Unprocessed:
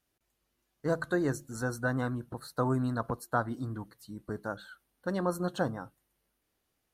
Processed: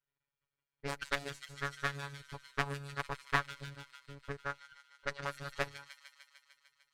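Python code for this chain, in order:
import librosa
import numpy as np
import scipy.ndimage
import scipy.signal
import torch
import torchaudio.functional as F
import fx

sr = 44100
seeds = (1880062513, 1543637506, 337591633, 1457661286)

y = fx.lower_of_two(x, sr, delay_ms=2.1)
y = fx.env_lowpass(y, sr, base_hz=1900.0, full_db=-27.5)
y = fx.transient(y, sr, attack_db=10, sustain_db=-10)
y = fx.robotise(y, sr, hz=141.0)
y = fx.tone_stack(y, sr, knobs='5-5-5')
y = fx.echo_wet_highpass(y, sr, ms=150, feedback_pct=73, hz=2700.0, wet_db=-7.0)
y = fx.doppler_dist(y, sr, depth_ms=0.59)
y = F.gain(torch.from_numpy(y), 7.5).numpy()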